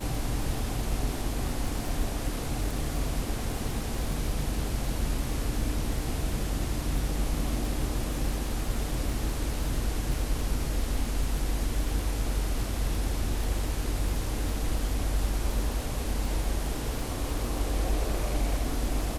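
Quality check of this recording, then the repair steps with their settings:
surface crackle 35 per second −32 dBFS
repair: click removal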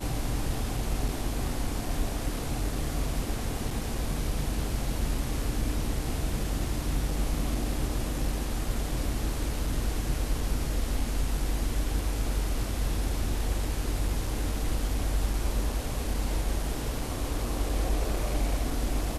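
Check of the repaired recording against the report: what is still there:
none of them is left

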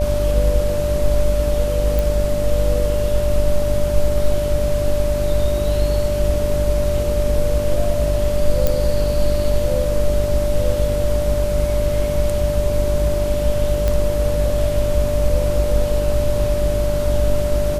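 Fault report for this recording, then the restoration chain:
mains buzz 50 Hz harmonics 14 −23 dBFS
whistle 590 Hz −20 dBFS
0:01.99: click
0:08.67: click
0:13.88: click −7 dBFS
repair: click removal
hum removal 50 Hz, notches 14
notch filter 590 Hz, Q 30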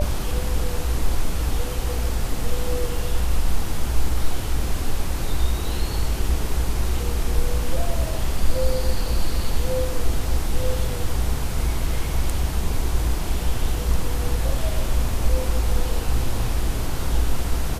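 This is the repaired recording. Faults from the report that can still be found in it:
none of them is left

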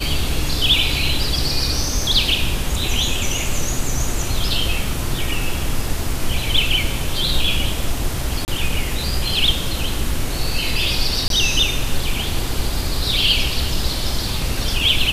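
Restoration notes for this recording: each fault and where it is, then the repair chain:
0:08.45–0:08.48: drop-out 29 ms
0:11.28–0:11.30: drop-out 22 ms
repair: repair the gap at 0:08.45, 29 ms
repair the gap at 0:11.28, 22 ms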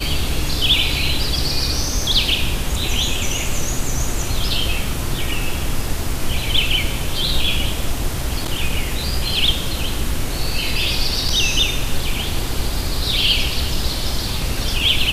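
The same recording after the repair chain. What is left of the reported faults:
none of them is left

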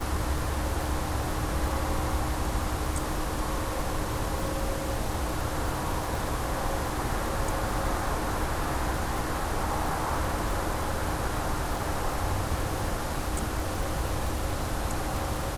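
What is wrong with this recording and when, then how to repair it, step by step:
surface crackle 59 per second −32 dBFS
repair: click removal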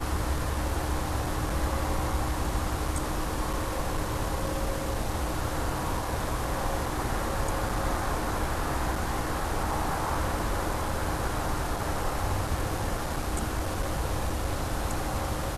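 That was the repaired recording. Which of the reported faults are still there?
none of them is left

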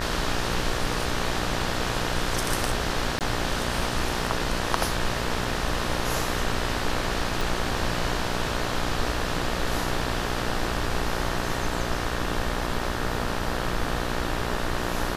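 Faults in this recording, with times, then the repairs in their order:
mains buzz 60 Hz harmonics 31 −31 dBFS
0:03.19–0:03.21: drop-out 18 ms
0:07.41: click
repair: click removal
hum removal 60 Hz, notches 31
repair the gap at 0:03.19, 18 ms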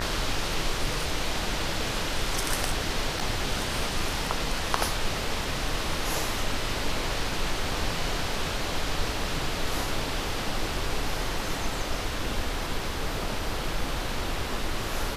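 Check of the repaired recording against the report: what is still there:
0:07.41: click

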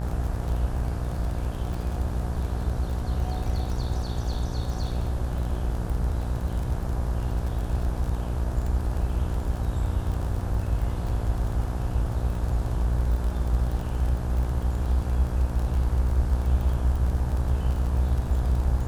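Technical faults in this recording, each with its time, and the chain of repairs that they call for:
mains buzz 60 Hz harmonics 29 −30 dBFS
surface crackle 33 per second −31 dBFS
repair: click removal
hum removal 60 Hz, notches 29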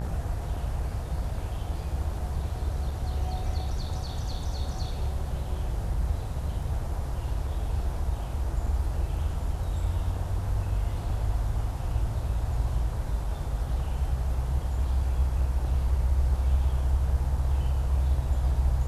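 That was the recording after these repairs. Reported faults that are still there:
none of them is left

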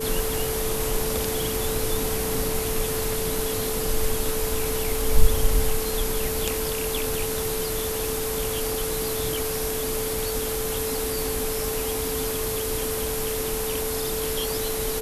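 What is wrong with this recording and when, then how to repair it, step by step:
whistle 440 Hz −28 dBFS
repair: notch filter 440 Hz, Q 30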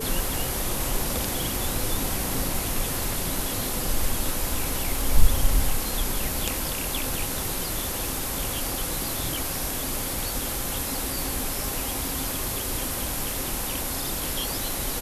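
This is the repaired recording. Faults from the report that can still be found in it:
none of them is left

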